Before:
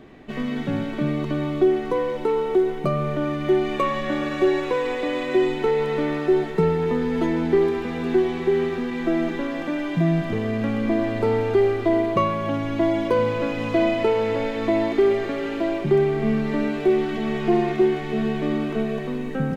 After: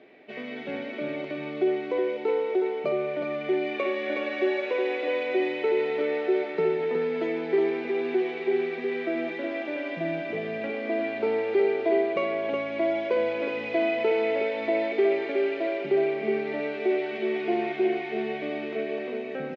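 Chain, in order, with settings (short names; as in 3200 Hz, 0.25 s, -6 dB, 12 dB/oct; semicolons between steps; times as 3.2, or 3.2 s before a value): speaker cabinet 340–4900 Hz, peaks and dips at 420 Hz +4 dB, 610 Hz +6 dB, 1100 Hz -8 dB, 2300 Hz +9 dB; on a send: echo 0.367 s -5.5 dB; on the sum: gain -6.5 dB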